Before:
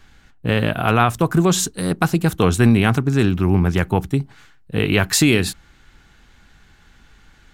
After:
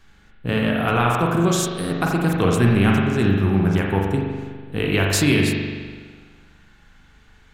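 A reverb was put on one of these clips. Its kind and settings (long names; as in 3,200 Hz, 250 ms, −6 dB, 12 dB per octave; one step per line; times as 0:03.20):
spring reverb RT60 1.6 s, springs 41 ms, chirp 50 ms, DRR −1 dB
level −4.5 dB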